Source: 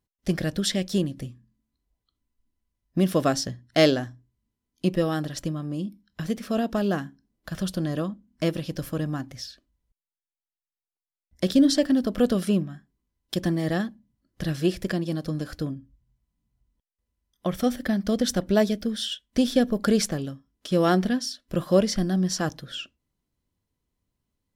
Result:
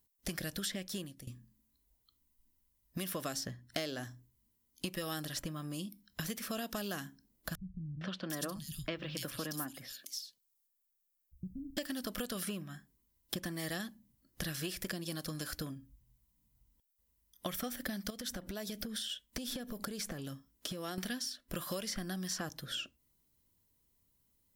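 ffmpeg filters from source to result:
ffmpeg -i in.wav -filter_complex "[0:a]asettb=1/sr,asplit=3[link_01][link_02][link_03];[link_01]atrim=end=7.554[link_04];[link_02]atrim=start=7.55:end=11.77,asetpts=PTS-STARTPTS,afade=type=in:duration=0.004:curve=qsin,afade=type=out:start_time=4.216:duration=0.004:curve=qsin,acrossover=split=150|3300[link_05][link_06][link_07];[link_06]adelay=460[link_08];[link_07]adelay=750[link_09];[link_05][link_08][link_09]amix=inputs=3:normalize=0,atrim=end_sample=186102[link_10];[link_03]atrim=start=11.766[link_11];[link_04][link_10]acrossfade=duration=0.004:curve1=hsin:curve2=qsin[link_12];[link_12][link_11]acrossfade=duration=0.004:curve1=qsin:curve2=hsin,asettb=1/sr,asplit=3[link_13][link_14][link_15];[link_13]atrim=end=18.104[link_16];[link_14]atrim=start=18.1:end=20.98,asetpts=PTS-STARTPTS,afade=type=in:duration=0.004:curve=qsin,afade=type=out:start_time=2.876:duration=0.004:curve=qsin,acompressor=threshold=-31dB:ratio=10:attack=3.2:release=140:knee=1:detection=peak[link_17];[link_15]atrim=start=20.976[link_18];[link_16][link_17]acrossfade=duration=0.004:curve1=hsin:curve2=qsin[link_19];[link_19][link_18]acrossfade=duration=0.004:curve1=qsin:curve2=hsin,asplit=2[link_20][link_21];[link_20]atrim=end=1.27,asetpts=PTS-STARTPTS,afade=type=out:start_time=0.71:duration=0.56:silence=0.105925[link_22];[link_21]atrim=start=1.27,asetpts=PTS-STARTPTS,afade=type=in:duration=0.004:curve=hsin:silence=0.105925[link_23];[link_22][link_23]concat=n=2:v=0:a=1,acompressor=threshold=-22dB:ratio=6,aemphasis=mode=production:type=50fm,acrossover=split=1000|2400[link_24][link_25][link_26];[link_24]acompressor=threshold=-41dB:ratio=4[link_27];[link_25]acompressor=threshold=-45dB:ratio=4[link_28];[link_26]acompressor=threshold=-42dB:ratio=4[link_29];[link_27][link_28][link_29]amix=inputs=3:normalize=0" out.wav

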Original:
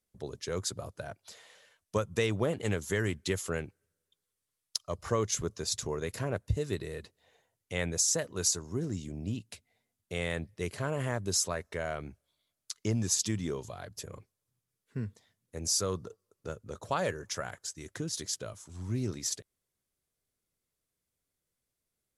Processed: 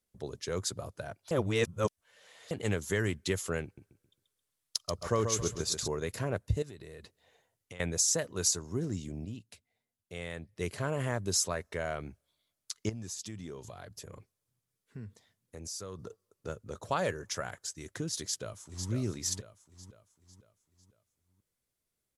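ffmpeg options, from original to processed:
ffmpeg -i in.wav -filter_complex "[0:a]asettb=1/sr,asplit=3[link_01][link_02][link_03];[link_01]atrim=end=3.644[link_04];[link_02]atrim=start=3.64:end=5.88,asetpts=PTS-STARTPTS,afade=type=in:duration=0.004:curve=qsin,afade=type=out:start_time=2.236:duration=0.004:curve=qsin,aecho=1:1:134|268|402|536:0.473|0.151|0.0485|0.0155,atrim=end_sample=98784[link_05];[link_03]atrim=start=5.876[link_06];[link_04][link_05]acrossfade=duration=0.004:curve1=hsin:curve2=qsin[link_07];[link_07][link_06]acrossfade=duration=0.004:curve1=qsin:curve2=hsin,asettb=1/sr,asplit=3[link_08][link_09][link_10];[link_08]atrim=end=6.624[link_11];[link_09]atrim=start=6.62:end=7.8,asetpts=PTS-STARTPTS,afade=type=in:duration=0.004:curve=qsin,afade=type=out:start_time=1.176:duration=0.004:curve=qsin,acompressor=threshold=-43dB:ratio=8:attack=3.2:release=140:knee=1:detection=peak[link_12];[link_10]atrim=start=7.796[link_13];[link_11][link_12]acrossfade=duration=0.004:curve1=hsin:curve2=qsin[link_14];[link_14][link_13]acrossfade=duration=0.004:curve1=qsin:curve2=hsin,asettb=1/sr,asplit=3[link_15][link_16][link_17];[link_15]atrim=end=12.894[link_18];[link_16]atrim=start=12.89:end=15.99,asetpts=PTS-STARTPTS,afade=type=in:duration=0.004:curve=qsin,afade=type=out:start_time=3.096:duration=0.004:curve=qsin,acompressor=threshold=-43dB:ratio=2.5:attack=3.2:release=140:knee=1:detection=peak[link_19];[link_17]atrim=start=15.986[link_20];[link_18][link_19]acrossfade=duration=0.004:curve1=hsin:curve2=qsin[link_21];[link_21][link_20]acrossfade=duration=0.004:curve1=qsin:curve2=hsin,asplit=2[link_22][link_23];[link_23]afade=type=in:start_time=18.22:duration=0.01,afade=type=out:start_time=18.9:duration=0.01,aecho=0:1:500|1000|1500|2000|2500:0.473151|0.212918|0.0958131|0.0431159|0.0194022[link_24];[link_22][link_24]amix=inputs=2:normalize=0,asplit=5[link_25][link_26][link_27][link_28][link_29];[link_25]atrim=end=1.312[link_30];[link_26]atrim=start=1.308:end=2.512,asetpts=PTS-STARTPTS,areverse[link_31];[link_27]atrim=start=2.508:end=9.252[link_32];[link_28]atrim=start=9.248:end=10.562,asetpts=PTS-STARTPTS,volume=-7dB[link_33];[link_29]atrim=start=10.558[link_34];[link_30][link_31]acrossfade=duration=0.004:curve1=hsin:curve2=hsin[link_35];[link_35][link_32]acrossfade=duration=0.004:curve1=hsin:curve2=hsin[link_36];[link_36][link_33]acrossfade=duration=0.004:curve1=hsin:curve2=hsin[link_37];[link_37][link_34]acrossfade=duration=0.004:curve1=hsin:curve2=hsin" out.wav

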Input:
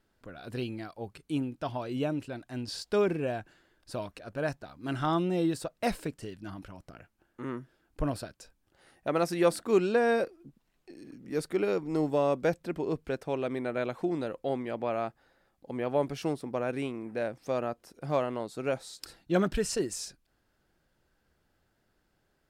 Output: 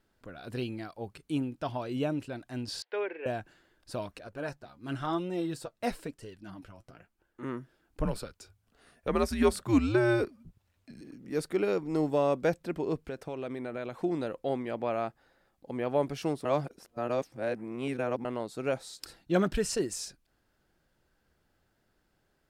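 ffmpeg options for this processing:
ffmpeg -i in.wav -filter_complex "[0:a]asettb=1/sr,asplit=3[link_01][link_02][link_03];[link_01]atrim=end=2.824[link_04];[link_02]atrim=start=2.82:end=3.26,asetpts=PTS-STARTPTS,afade=type=in:duration=0.004:curve=qsin,afade=type=out:start_time=0.436:duration=0.004:curve=qsin,highpass=frequency=480:width=0.5412,highpass=frequency=480:width=1.3066,equalizer=frequency=680:width_type=q:width=4:gain=-8,equalizer=frequency=1200:width_type=q:width=4:gain=-9,equalizer=frequency=1900:width_type=q:width=4:gain=4,lowpass=frequency=2800:width=0.5412,lowpass=frequency=2800:width=1.3066[link_05];[link_03]atrim=start=3.256[link_06];[link_04][link_05]acrossfade=duration=0.004:curve1=hsin:curve2=qsin[link_07];[link_07][link_06]acrossfade=duration=0.004:curve1=qsin:curve2=hsin,asettb=1/sr,asplit=3[link_08][link_09][link_10];[link_08]atrim=end=4.274[link_11];[link_09]atrim=start=4.27:end=7.43,asetpts=PTS-STARTPTS,afade=type=in:duration=0.004:curve=qsin,afade=type=out:start_time=3.156:duration=0.004:curve=qsin,flanger=delay=1.9:depth=7.2:regen=39:speed=1:shape=sinusoidal[link_12];[link_10]atrim=start=7.426[link_13];[link_11][link_12]acrossfade=duration=0.004:curve1=hsin:curve2=qsin[link_14];[link_14][link_13]acrossfade=duration=0.004:curve1=qsin:curve2=hsin,asettb=1/sr,asplit=3[link_15][link_16][link_17];[link_15]atrim=end=8.054[link_18];[link_16]atrim=start=8.05:end=11.01,asetpts=PTS-STARTPTS,afade=type=in:duration=0.004:curve=qsin,afade=type=out:start_time=2.956:duration=0.004:curve=qsin,afreqshift=-110[link_19];[link_17]atrim=start=11.006[link_20];[link_18][link_19]acrossfade=duration=0.004:curve1=hsin:curve2=qsin[link_21];[link_21][link_20]acrossfade=duration=0.004:curve1=qsin:curve2=hsin,asettb=1/sr,asplit=3[link_22][link_23][link_24];[link_22]atrim=end=13.024[link_25];[link_23]atrim=start=13.02:end=14.01,asetpts=PTS-STARTPTS,afade=type=in:duration=0.004:curve=qsin,afade=type=out:start_time=0.986:duration=0.004:curve=qsin,acompressor=threshold=-33dB:ratio=4:attack=3.2:release=140:knee=1:detection=peak[link_26];[link_24]atrim=start=14.006[link_27];[link_25][link_26]acrossfade=duration=0.004:curve1=hsin:curve2=qsin[link_28];[link_28][link_27]acrossfade=duration=0.004:curve1=qsin:curve2=hsin,asplit=3[link_29][link_30][link_31];[link_29]atrim=end=16.452[link_32];[link_30]atrim=start=16.448:end=18.252,asetpts=PTS-STARTPTS,areverse[link_33];[link_31]atrim=start=18.248[link_34];[link_32][link_33]acrossfade=duration=0.004:curve1=hsin:curve2=hsin[link_35];[link_35][link_34]acrossfade=duration=0.004:curve1=hsin:curve2=hsin" out.wav

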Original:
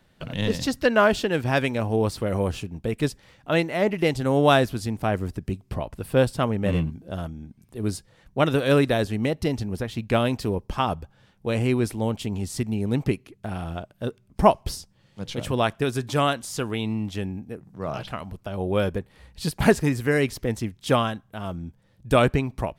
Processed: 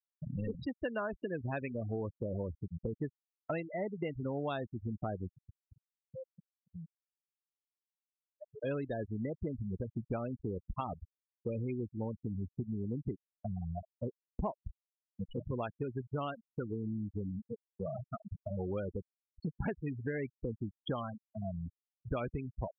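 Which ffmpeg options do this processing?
ffmpeg -i in.wav -filter_complex "[0:a]asettb=1/sr,asplit=3[link_01][link_02][link_03];[link_01]atrim=end=5.274[link_04];[link_02]atrim=start=5.27:end=8.63,asetpts=PTS-STARTPTS,afade=type=in:duration=0.004:curve=qsin,afade=type=out:start_time=3.356:duration=0.004:curve=qsin,acompressor=threshold=-43dB:ratio=2.5:attack=3.2:release=140:knee=1:detection=peak[link_05];[link_03]atrim=start=8.626[link_06];[link_04][link_05]acrossfade=duration=0.004:curve1=hsin:curve2=qsin[link_07];[link_07][link_06]acrossfade=duration=0.004:curve1=qsin:curve2=hsin,afftfilt=real='re*gte(hypot(re,im),0.126)':imag='im*gte(hypot(re,im),0.126)':win_size=1024:overlap=0.75,agate=range=-33dB:threshold=-45dB:ratio=3:detection=peak,acompressor=threshold=-32dB:ratio=6,volume=-2.5dB" out.wav

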